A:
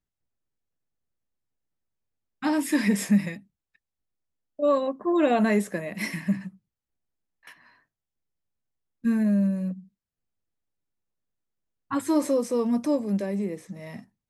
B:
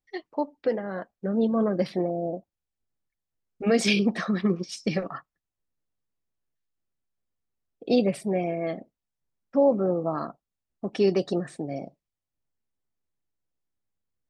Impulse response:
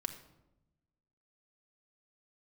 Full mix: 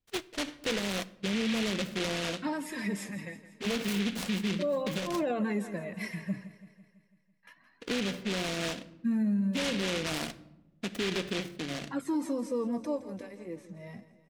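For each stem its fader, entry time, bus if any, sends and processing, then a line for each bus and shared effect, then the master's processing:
−4.0 dB, 0.00 s, no send, echo send −15.5 dB, through-zero flanger with one copy inverted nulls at 0.3 Hz, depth 5.3 ms
+0.5 dB, 0.00 s, send −9.5 dB, no echo send, low-pass filter 2,400 Hz 12 dB per octave; short delay modulated by noise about 2,600 Hz, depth 0.28 ms; automatic ducking −10 dB, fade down 1.60 s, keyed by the first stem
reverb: on, RT60 0.95 s, pre-delay 4 ms
echo: repeating echo 166 ms, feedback 58%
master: high-shelf EQ 7,700 Hz −7 dB; brickwall limiter −23 dBFS, peak gain reduction 11.5 dB

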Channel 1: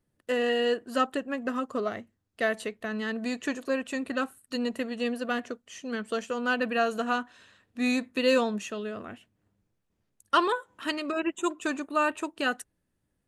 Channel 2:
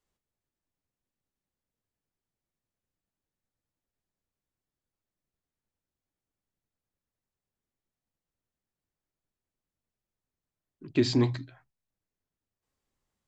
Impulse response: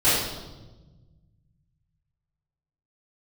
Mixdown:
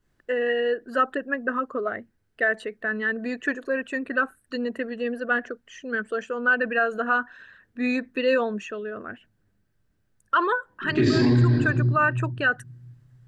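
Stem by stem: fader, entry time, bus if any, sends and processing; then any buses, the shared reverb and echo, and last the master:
+1.5 dB, 0.00 s, no send, spectral envelope exaggerated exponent 1.5; low-pass filter 3,300 Hz 6 dB per octave
−3.5 dB, 0.00 s, send −7 dB, low-shelf EQ 410 Hz +6.5 dB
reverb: on, RT60 1.2 s, pre-delay 3 ms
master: parametric band 1,600 Hz +12 dB 0.51 octaves; brickwall limiter −12 dBFS, peak gain reduction 11 dB

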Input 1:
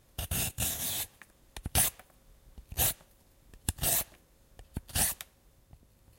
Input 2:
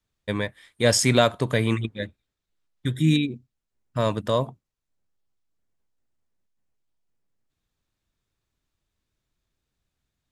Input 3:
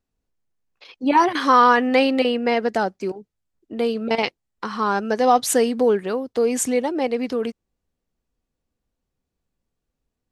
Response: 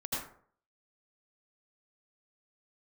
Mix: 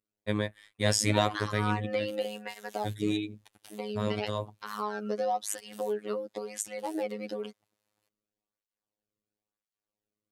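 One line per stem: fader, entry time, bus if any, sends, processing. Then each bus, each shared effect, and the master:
−9.5 dB, 1.90 s, no send, meter weighting curve A; downward compressor 5 to 1, threshold −42 dBFS, peak gain reduction 16 dB
−1.0 dB, 0.00 s, no send, downward expander −48 dBFS; automatic ducking −6 dB, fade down 1.95 s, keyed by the third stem
−3.5 dB, 0.00 s, no send, downward compressor 4 to 1, threshold −21 dBFS, peak gain reduction 9.5 dB; through-zero flanger with one copy inverted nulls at 0.98 Hz, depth 1.3 ms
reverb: not used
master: phases set to zero 105 Hz

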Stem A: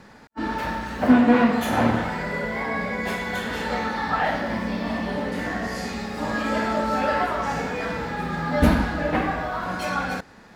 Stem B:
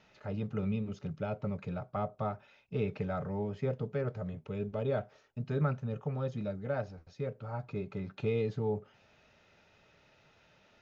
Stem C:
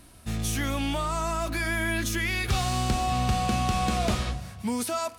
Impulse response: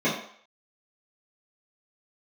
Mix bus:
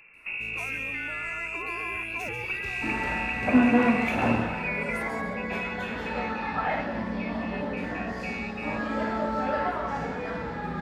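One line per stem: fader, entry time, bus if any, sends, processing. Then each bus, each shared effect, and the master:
−4.0 dB, 2.45 s, no bus, no send, no echo send, low-pass filter 2,100 Hz 6 dB per octave
−6.0 dB, 0.00 s, bus A, no send, no echo send, no processing
−3.5 dB, 0.00 s, bus A, no send, echo send −14.5 dB, parametric band 430 Hz +15 dB 0.54 octaves
bus A: 0.0 dB, voice inversion scrambler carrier 2,700 Hz; downward compressor 2 to 1, threshold −33 dBFS, peak gain reduction 7.5 dB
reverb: not used
echo: repeating echo 138 ms, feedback 33%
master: no processing

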